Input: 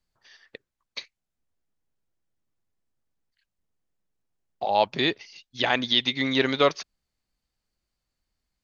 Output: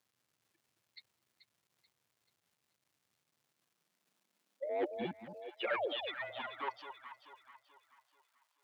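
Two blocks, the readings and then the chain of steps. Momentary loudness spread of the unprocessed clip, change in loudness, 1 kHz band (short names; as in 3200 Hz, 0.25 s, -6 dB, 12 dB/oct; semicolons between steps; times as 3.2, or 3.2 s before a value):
18 LU, -16.0 dB, -14.5 dB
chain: per-bin expansion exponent 3; notches 60/120/180/240 Hz; dynamic EQ 300 Hz, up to +8 dB, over -42 dBFS, Q 1.1; reverse; compressor 5:1, threshold -31 dBFS, peak gain reduction 14 dB; reverse; soft clip -35 dBFS, distortion -8 dB; mistuned SSB -150 Hz 150–3500 Hz; crackle 540/s -68 dBFS; painted sound fall, 5.67–5.93, 250–2500 Hz -43 dBFS; echo with dull and thin repeats by turns 0.217 s, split 900 Hz, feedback 63%, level -7 dB; high-pass sweep 110 Hz -> 950 Hz, 3.18–6.94; gain +2 dB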